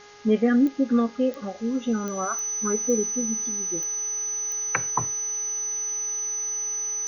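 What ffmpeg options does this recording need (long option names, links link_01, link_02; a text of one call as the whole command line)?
ffmpeg -i in.wav -af "adeclick=threshold=4,bandreject=frequency=412.9:width_type=h:width=4,bandreject=frequency=825.8:width_type=h:width=4,bandreject=frequency=1238.7:width_type=h:width=4,bandreject=frequency=1651.6:width_type=h:width=4,bandreject=frequency=2064.5:width_type=h:width=4,bandreject=frequency=6000:width=30,afwtdn=0.004" out.wav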